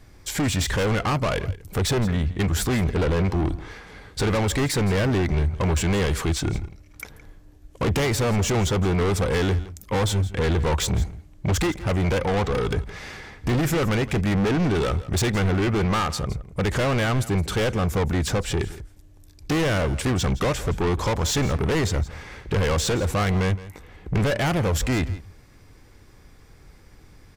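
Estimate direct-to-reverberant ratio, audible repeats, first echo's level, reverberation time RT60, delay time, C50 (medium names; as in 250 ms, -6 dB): no reverb, 1, -17.0 dB, no reverb, 167 ms, no reverb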